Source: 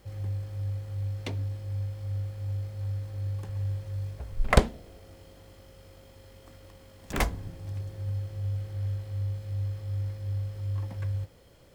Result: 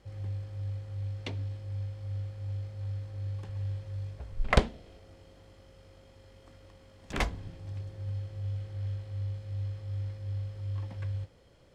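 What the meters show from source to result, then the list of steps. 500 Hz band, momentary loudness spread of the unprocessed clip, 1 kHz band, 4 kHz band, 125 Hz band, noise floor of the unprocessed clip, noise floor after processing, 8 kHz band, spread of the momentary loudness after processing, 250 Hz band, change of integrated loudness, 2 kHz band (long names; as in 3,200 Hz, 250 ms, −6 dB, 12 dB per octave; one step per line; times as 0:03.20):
−3.5 dB, 21 LU, −3.0 dB, −1.0 dB, −3.5 dB, −54 dBFS, −58 dBFS, −7.0 dB, 10 LU, −3.5 dB, −3.5 dB, −2.0 dB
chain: Bessel low-pass filter 6,500 Hz, order 2
dynamic equaliser 3,200 Hz, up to +4 dB, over −59 dBFS, Q 0.99
level −3.5 dB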